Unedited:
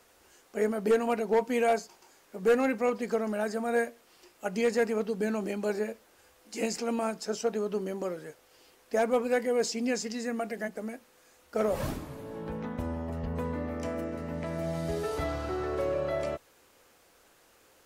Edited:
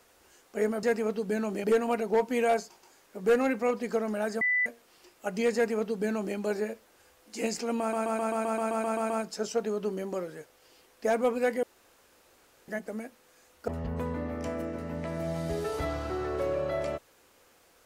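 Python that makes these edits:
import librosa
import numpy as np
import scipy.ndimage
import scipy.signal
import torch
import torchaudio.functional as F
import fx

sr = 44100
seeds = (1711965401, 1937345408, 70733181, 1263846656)

y = fx.edit(x, sr, fx.bleep(start_s=3.6, length_s=0.25, hz=1990.0, db=-23.0),
    fx.duplicate(start_s=4.74, length_s=0.81, to_s=0.83),
    fx.stutter(start_s=6.99, slice_s=0.13, count=11),
    fx.room_tone_fill(start_s=9.52, length_s=1.05),
    fx.cut(start_s=11.57, length_s=1.5), tone=tone)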